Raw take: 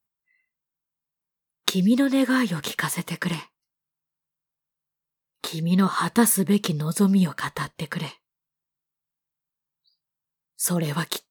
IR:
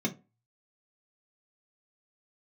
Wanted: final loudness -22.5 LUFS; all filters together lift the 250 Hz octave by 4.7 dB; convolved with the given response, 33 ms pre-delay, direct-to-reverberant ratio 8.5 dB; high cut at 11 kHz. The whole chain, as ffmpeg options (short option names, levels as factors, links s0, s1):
-filter_complex "[0:a]lowpass=11000,equalizer=f=250:t=o:g=6,asplit=2[s0][s1];[1:a]atrim=start_sample=2205,adelay=33[s2];[s1][s2]afir=irnorm=-1:irlink=0,volume=0.188[s3];[s0][s3]amix=inputs=2:normalize=0,volume=0.398"